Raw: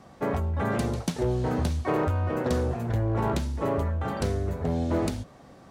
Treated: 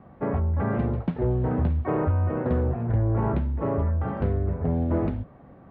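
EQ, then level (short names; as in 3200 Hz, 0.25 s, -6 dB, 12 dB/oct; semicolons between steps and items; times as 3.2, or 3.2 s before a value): air absorption 490 m; tone controls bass +3 dB, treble -11 dB; high shelf 6100 Hz -9 dB; +1.0 dB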